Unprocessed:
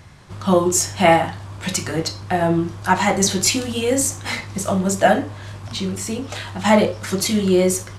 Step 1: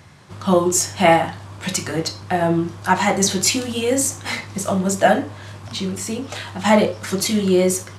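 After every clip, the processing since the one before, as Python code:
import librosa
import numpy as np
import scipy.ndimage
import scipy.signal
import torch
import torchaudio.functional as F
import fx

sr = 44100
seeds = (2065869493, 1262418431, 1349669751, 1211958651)

y = scipy.signal.sosfilt(scipy.signal.butter(2, 99.0, 'highpass', fs=sr, output='sos'), x)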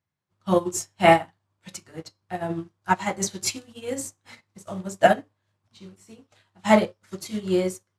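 y = fx.upward_expand(x, sr, threshold_db=-36.0, expansion=2.5)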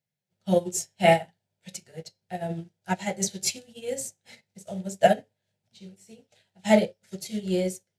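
y = fx.fixed_phaser(x, sr, hz=300.0, stages=6)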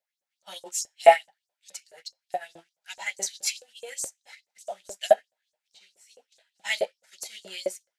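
y = fx.filter_lfo_highpass(x, sr, shape='saw_up', hz=4.7, low_hz=510.0, high_hz=7500.0, q=3.0)
y = F.gain(torch.from_numpy(y), -1.5).numpy()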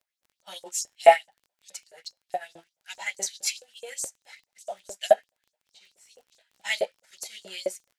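y = fx.dmg_crackle(x, sr, seeds[0], per_s=19.0, level_db=-47.0)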